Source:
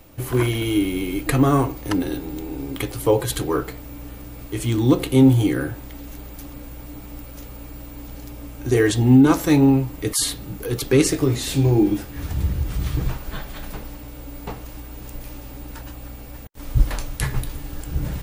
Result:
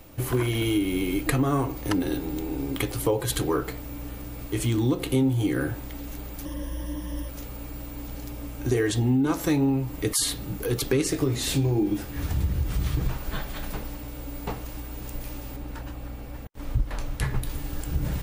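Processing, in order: 6.45–7.29 s: rippled EQ curve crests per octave 1.2, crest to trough 15 dB; compression 4:1, threshold -21 dBFS, peak gain reduction 11 dB; 15.56–17.43 s: treble shelf 3.9 kHz -9 dB

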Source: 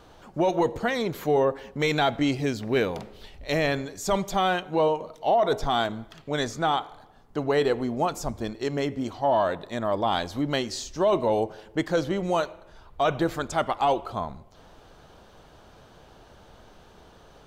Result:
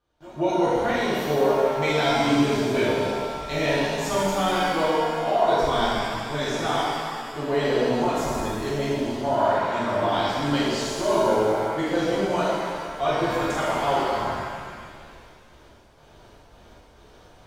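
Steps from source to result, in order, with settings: pre-echo 176 ms -21 dB; gate with hold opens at -41 dBFS; pitch-shifted reverb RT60 1.9 s, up +7 st, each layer -8 dB, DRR -9 dB; trim -7.5 dB

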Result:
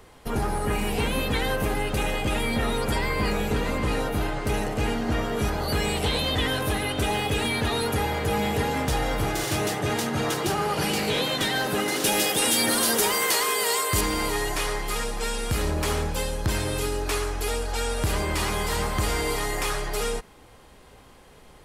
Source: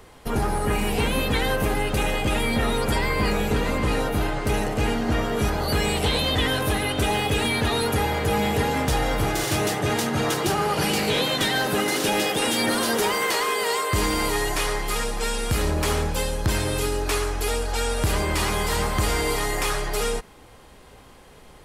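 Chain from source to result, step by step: 12.04–14.01 s: treble shelf 5.2 kHz +11 dB; trim -2.5 dB

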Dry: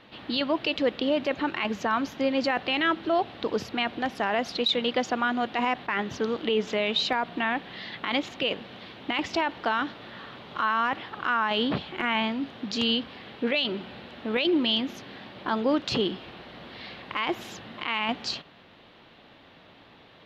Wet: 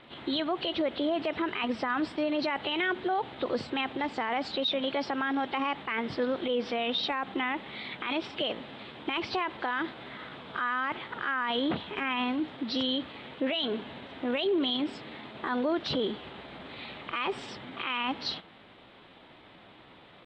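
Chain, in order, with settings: knee-point frequency compression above 2.5 kHz 1.5:1; peak limiter -21 dBFS, peak gain reduction 7 dB; pitch shift +2 st

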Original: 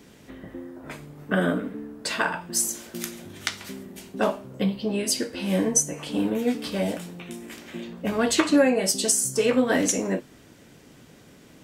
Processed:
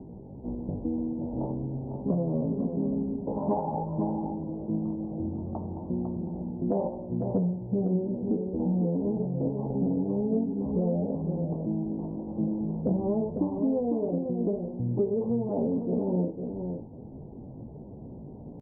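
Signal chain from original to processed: steep low-pass 990 Hz 72 dB/octave; bass shelf 180 Hz +6.5 dB; in parallel at -0.5 dB: peak limiter -18 dBFS, peak gain reduction 9 dB; on the sum: compression 20:1, threshold -24 dBFS, peak gain reduction 14.5 dB; tempo 0.68×; on a send: delay 461 ms -6.5 dB; on the sum: speed mistake 48 kHz file played as 44.1 kHz

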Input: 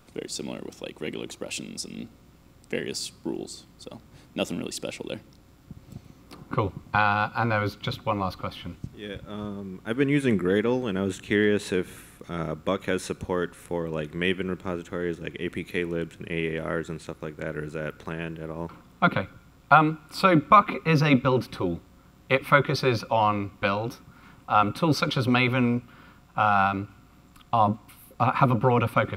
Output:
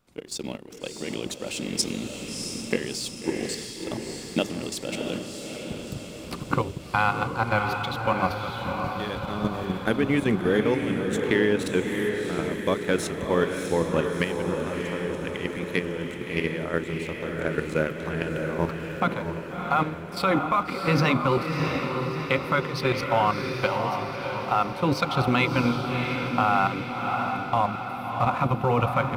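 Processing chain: recorder AGC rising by 5.8 dB/s; hum notches 50/100/150/200/250/300/350/400 Hz; level held to a coarse grid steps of 11 dB; waveshaping leveller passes 1; echo that smears into a reverb 661 ms, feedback 57%, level -4.5 dB; trim -3 dB

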